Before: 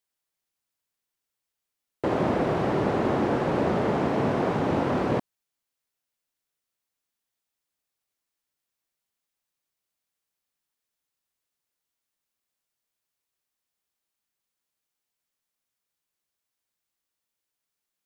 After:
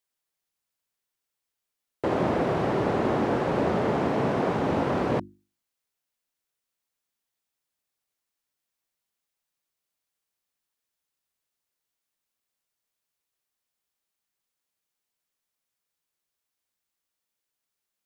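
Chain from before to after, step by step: notches 50/100/150/200/250/300/350 Hz

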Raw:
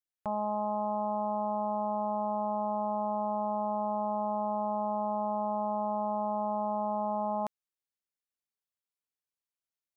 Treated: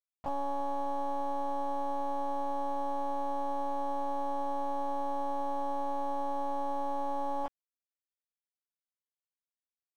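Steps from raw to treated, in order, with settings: monotone LPC vocoder at 8 kHz 280 Hz; crossover distortion -51 dBFS

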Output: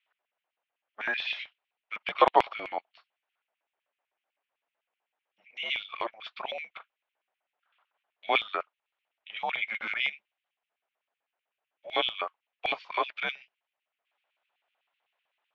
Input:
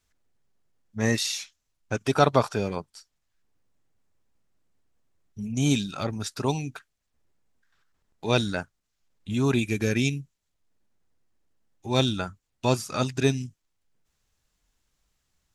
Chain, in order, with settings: mistuned SSB -220 Hz 450–3400 Hz; 6.72–8.41 doubler 40 ms -14 dB; LFO high-pass square 7.9 Hz 690–2500 Hz

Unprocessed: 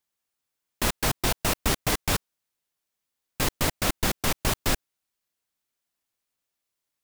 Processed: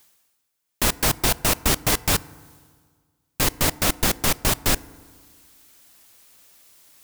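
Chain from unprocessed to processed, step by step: reverse; upward compressor, threshold -40 dBFS; reverse; high shelf 5500 Hz +5 dB; FDN reverb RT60 1.7 s, low-frequency decay 1.1×, high-frequency decay 0.35×, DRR 19 dB; gain +3 dB

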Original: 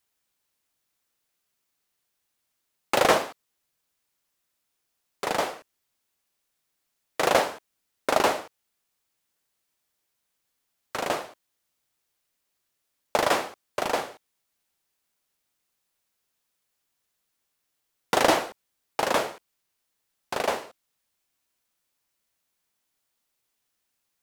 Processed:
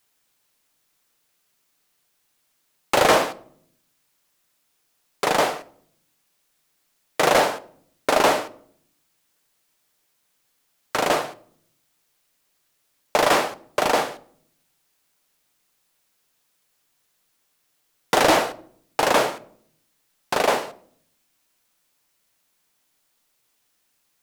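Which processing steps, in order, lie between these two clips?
in parallel at -2 dB: limiter -15 dBFS, peak gain reduction 10 dB; on the sum: bell 67 Hz -12 dB 0.47 oct; reverb RT60 0.60 s, pre-delay 7 ms, DRR 14.5 dB; soft clip -12.5 dBFS, distortion -14 dB; gain +3.5 dB

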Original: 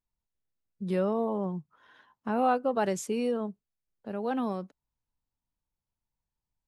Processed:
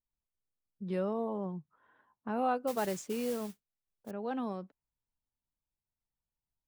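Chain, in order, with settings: low-pass opened by the level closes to 1200 Hz, open at -24 dBFS; 2.67–4.11 modulation noise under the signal 14 dB; gain -5.5 dB

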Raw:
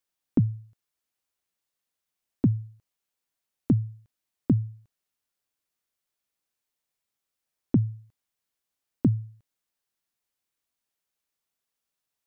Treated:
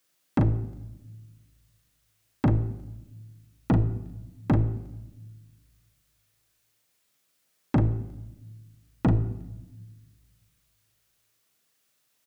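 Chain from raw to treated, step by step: octaver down 1 oct, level -3 dB; HPF 110 Hz 6 dB/oct; bell 880 Hz -5.5 dB 0.49 oct; in parallel at +2 dB: compressor, threshold -28 dBFS, peak gain reduction 11 dB; on the sum: soft clip -23 dBFS, distortion -6 dB; doubler 39 ms -5 dB; on a send at -12.5 dB: reverb RT60 1.1 s, pre-delay 6 ms; on the sum: gain +5.5 dB

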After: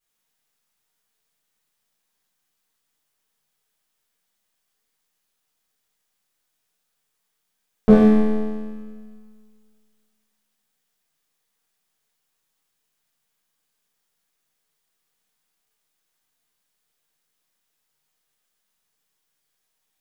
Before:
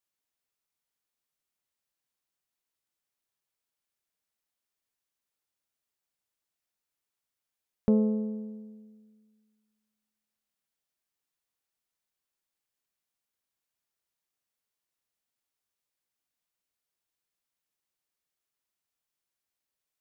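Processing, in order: half-wave rectifier; two-slope reverb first 0.8 s, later 2.1 s, DRR -10 dB; gain +6 dB

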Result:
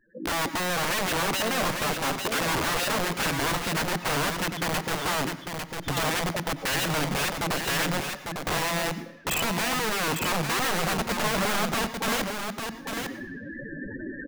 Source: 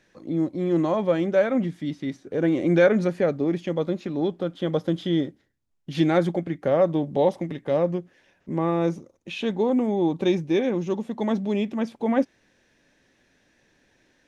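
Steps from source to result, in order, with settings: recorder AGC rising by 40 dB/s; loudest bins only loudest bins 8; compressor 3:1, threshold -22 dBFS, peak gain reduction 7.5 dB; wrapped overs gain 24 dB; echo 0.85 s -5.5 dB; on a send at -12.5 dB: reverb RT60 1.0 s, pre-delay 90 ms; on the sum: gain +1.5 dB

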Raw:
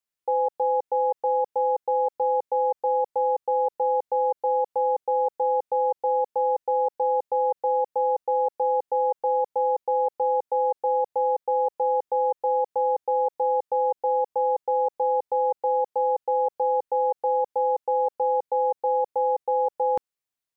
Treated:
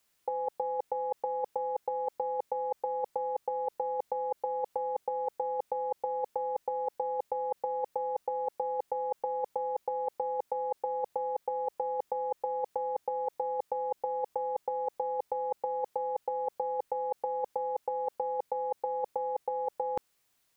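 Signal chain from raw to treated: negative-ratio compressor -31 dBFS, ratio -0.5; gain +3 dB

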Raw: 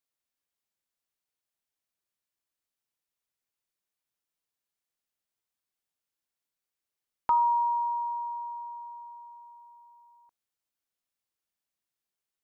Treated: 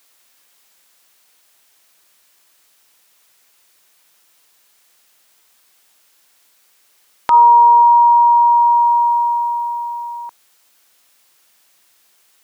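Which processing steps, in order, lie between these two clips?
7.33–7.82 octaver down 1 oct, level -6 dB; HPF 99 Hz 12 dB/oct; low shelf 360 Hz -11.5 dB; compressor 4:1, threshold -43 dBFS, peak gain reduction 16.5 dB; maximiser +34 dB; gain -1 dB

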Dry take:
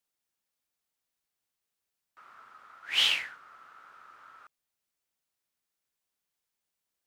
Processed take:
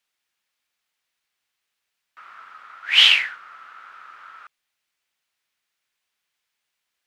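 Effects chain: bell 2300 Hz +13 dB 2.8 oct

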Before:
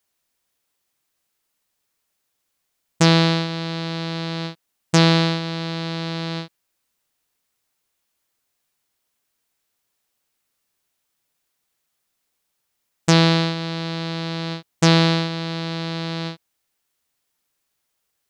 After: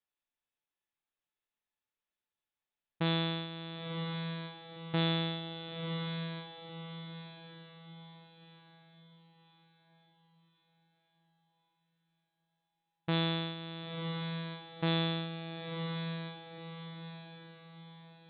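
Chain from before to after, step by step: steep low-pass 3900 Hz 96 dB/oct; resonator 860 Hz, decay 0.33 s, mix 80%; diffused feedback echo 1.009 s, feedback 44%, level -7.5 dB; gain -3 dB

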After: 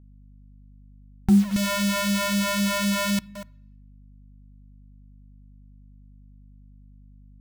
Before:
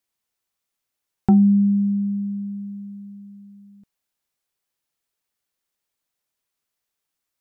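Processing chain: 1.56–3.19 infinite clipping; dynamic EQ 170 Hz, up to -5 dB, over -28 dBFS, Q 0.82; in parallel at -1 dB: limiter -20 dBFS, peak gain reduction 11 dB; on the sum: phaser stages 2, 3.9 Hz, lowest notch 190–1000 Hz; bit-crush 6-bit; hum 50 Hz, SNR 22 dB; on a send at -19 dB: reverb RT60 0.70 s, pre-delay 3 ms

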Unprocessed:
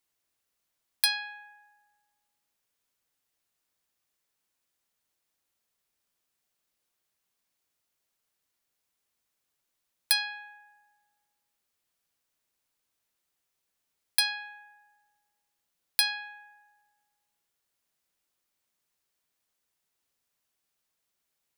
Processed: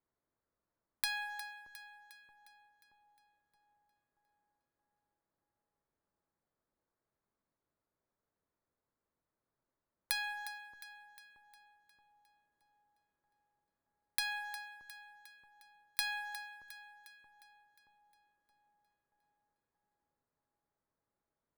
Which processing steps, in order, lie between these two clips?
Wiener smoothing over 15 samples; high shelf 2000 Hz -11 dB; notch 760 Hz, Q 15; sample leveller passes 2; compressor, threshold -42 dBFS, peak gain reduction 16.5 dB; on a send: split-band echo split 970 Hz, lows 0.626 s, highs 0.357 s, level -13 dB; on the sum: plate-style reverb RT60 1.1 s, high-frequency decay 0.75×, DRR 17.5 dB; gain +7 dB

